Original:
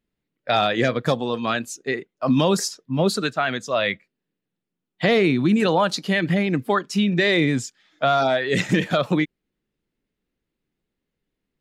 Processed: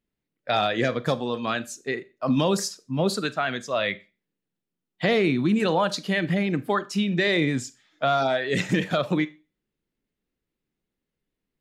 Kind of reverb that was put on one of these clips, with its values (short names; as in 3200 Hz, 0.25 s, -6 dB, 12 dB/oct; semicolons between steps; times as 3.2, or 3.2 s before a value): Schroeder reverb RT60 0.31 s, combs from 29 ms, DRR 16 dB; gain -3.5 dB